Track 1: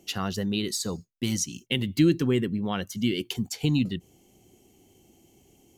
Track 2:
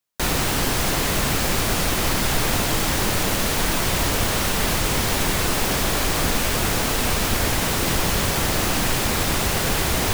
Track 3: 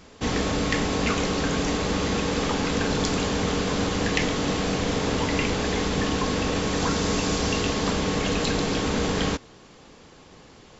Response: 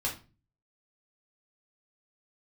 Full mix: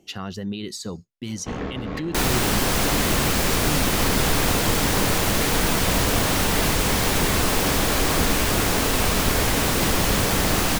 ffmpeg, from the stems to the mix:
-filter_complex "[0:a]highshelf=f=7900:g=-11.5,volume=1[s0];[1:a]adelay=1950,volume=1[s1];[2:a]tremolo=f=78:d=0.621,lowpass=2000,asoftclip=type=tanh:threshold=0.0944,adelay=1250,volume=1.12[s2];[s0][s2]amix=inputs=2:normalize=0,alimiter=limit=0.0944:level=0:latency=1:release=73,volume=1[s3];[s1][s3]amix=inputs=2:normalize=0"

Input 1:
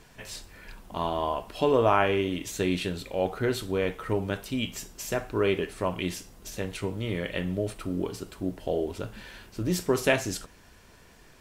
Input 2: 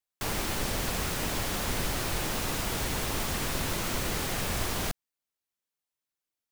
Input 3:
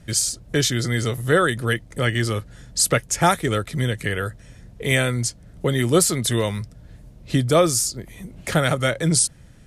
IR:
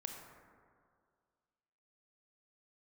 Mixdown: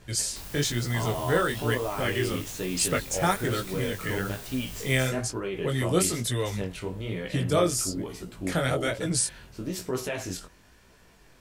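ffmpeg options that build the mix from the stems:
-filter_complex "[0:a]alimiter=limit=0.106:level=0:latency=1:release=56,volume=1.06[s0];[1:a]highshelf=f=12000:g=8.5,acrossover=split=140|3000[s1][s2][s3];[s2]acompressor=threshold=0.0126:ratio=6[s4];[s1][s4][s3]amix=inputs=3:normalize=0,adelay=150,volume=0.376[s5];[2:a]volume=0.631[s6];[s0][s5][s6]amix=inputs=3:normalize=0,flanger=delay=15.5:depth=7.7:speed=1.1"

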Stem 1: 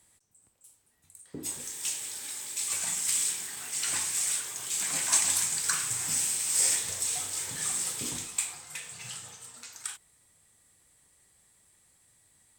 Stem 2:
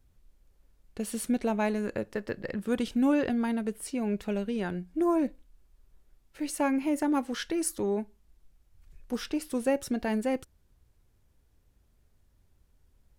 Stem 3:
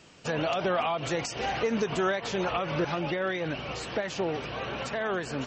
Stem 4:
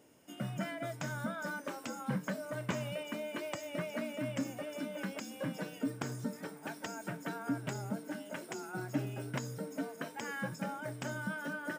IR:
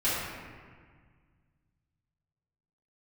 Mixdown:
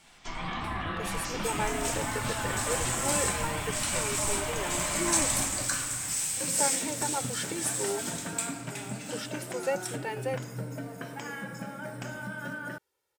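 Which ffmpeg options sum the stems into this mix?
-filter_complex "[0:a]volume=0.631,asplit=2[s0][s1];[s1]volume=0.211[s2];[1:a]highpass=480,aecho=1:1:2.2:0.74,volume=0.708[s3];[2:a]highpass=f=420:p=1,alimiter=level_in=1.33:limit=0.0631:level=0:latency=1,volume=0.75,aeval=exprs='val(0)*sin(2*PI*480*n/s)':c=same,volume=0.562,asplit=2[s4][s5];[s5]volume=0.668[s6];[3:a]acompressor=threshold=0.01:ratio=6,adelay=1000,volume=1.33,asplit=3[s7][s8][s9];[s7]atrim=end=5.64,asetpts=PTS-STARTPTS,afade=t=out:st=5.636:d=0.004:c=hsin[s10];[s8]atrim=start=5.64:end=6.37,asetpts=PTS-STARTPTS,volume=0[s11];[s9]atrim=start=6.37,asetpts=PTS-STARTPTS,afade=t=in:d=0.004:c=hsin[s12];[s10][s11][s12]concat=n=3:v=0:a=1,asplit=2[s13][s14];[s14]volume=0.237[s15];[4:a]atrim=start_sample=2205[s16];[s2][s6][s15]amix=inputs=3:normalize=0[s17];[s17][s16]afir=irnorm=-1:irlink=0[s18];[s0][s3][s4][s13][s18]amix=inputs=5:normalize=0"

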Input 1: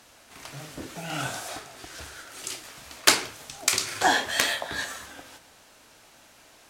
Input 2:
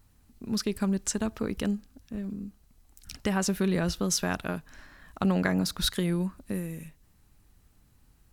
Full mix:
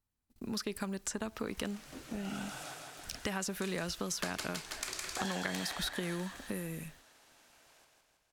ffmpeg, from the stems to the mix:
-filter_complex "[0:a]adelay=1150,volume=0.282,asplit=2[s0][s1];[s1]volume=0.631[s2];[1:a]agate=range=0.0562:threshold=0.002:ratio=16:detection=peak,volume=1.41[s3];[s2]aecho=0:1:162|324|486|648|810|972|1134|1296|1458:1|0.59|0.348|0.205|0.121|0.0715|0.0422|0.0249|0.0147[s4];[s0][s3][s4]amix=inputs=3:normalize=0,acrossover=split=480|2000[s5][s6][s7];[s5]acompressor=threshold=0.0251:ratio=4[s8];[s6]acompressor=threshold=0.02:ratio=4[s9];[s7]acompressor=threshold=0.0224:ratio=4[s10];[s8][s9][s10]amix=inputs=3:normalize=0,lowshelf=f=190:g=-6,acompressor=threshold=0.01:ratio=1.5"

